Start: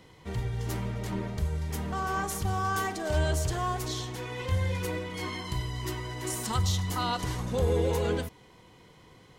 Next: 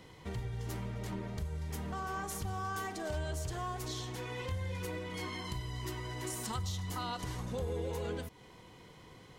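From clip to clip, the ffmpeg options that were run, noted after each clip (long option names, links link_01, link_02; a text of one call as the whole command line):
ffmpeg -i in.wav -af "acompressor=threshold=-39dB:ratio=2.5" out.wav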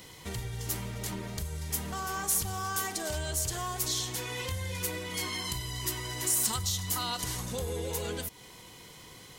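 ffmpeg -i in.wav -af "crystalizer=i=4.5:c=0,asoftclip=type=tanh:threshold=-19.5dB,volume=1.5dB" out.wav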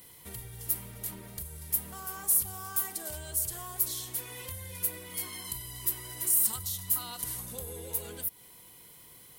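ffmpeg -i in.wav -af "aexciter=amount=5.2:drive=6:freq=9000,volume=-8.5dB" out.wav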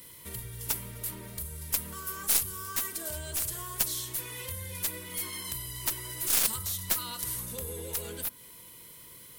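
ffmpeg -i in.wav -af "asuperstop=centerf=760:order=4:qfactor=5.5,bandreject=frequency=49.66:width_type=h:width=4,bandreject=frequency=99.32:width_type=h:width=4,bandreject=frequency=148.98:width_type=h:width=4,bandreject=frequency=198.64:width_type=h:width=4,bandreject=frequency=248.3:width_type=h:width=4,bandreject=frequency=297.96:width_type=h:width=4,bandreject=frequency=347.62:width_type=h:width=4,bandreject=frequency=397.28:width_type=h:width=4,bandreject=frequency=446.94:width_type=h:width=4,bandreject=frequency=496.6:width_type=h:width=4,bandreject=frequency=546.26:width_type=h:width=4,bandreject=frequency=595.92:width_type=h:width=4,bandreject=frequency=645.58:width_type=h:width=4,bandreject=frequency=695.24:width_type=h:width=4,bandreject=frequency=744.9:width_type=h:width=4,bandreject=frequency=794.56:width_type=h:width=4,bandreject=frequency=844.22:width_type=h:width=4,bandreject=frequency=893.88:width_type=h:width=4,bandreject=frequency=943.54:width_type=h:width=4,bandreject=frequency=993.2:width_type=h:width=4,bandreject=frequency=1042.86:width_type=h:width=4,bandreject=frequency=1092.52:width_type=h:width=4,bandreject=frequency=1142.18:width_type=h:width=4,bandreject=frequency=1191.84:width_type=h:width=4,bandreject=frequency=1241.5:width_type=h:width=4,bandreject=frequency=1291.16:width_type=h:width=4,bandreject=frequency=1340.82:width_type=h:width=4,bandreject=frequency=1390.48:width_type=h:width=4,bandreject=frequency=1440.14:width_type=h:width=4,bandreject=frequency=1489.8:width_type=h:width=4,bandreject=frequency=1539.46:width_type=h:width=4,bandreject=frequency=1589.12:width_type=h:width=4,bandreject=frequency=1638.78:width_type=h:width=4,bandreject=frequency=1688.44:width_type=h:width=4,bandreject=frequency=1738.1:width_type=h:width=4,bandreject=frequency=1787.76:width_type=h:width=4,aeval=exprs='0.266*(cos(1*acos(clip(val(0)/0.266,-1,1)))-cos(1*PI/2))+0.075*(cos(2*acos(clip(val(0)/0.266,-1,1)))-cos(2*PI/2))+0.0422*(cos(4*acos(clip(val(0)/0.266,-1,1)))-cos(4*PI/2))+0.0944*(cos(7*acos(clip(val(0)/0.266,-1,1)))-cos(7*PI/2))':channel_layout=same" out.wav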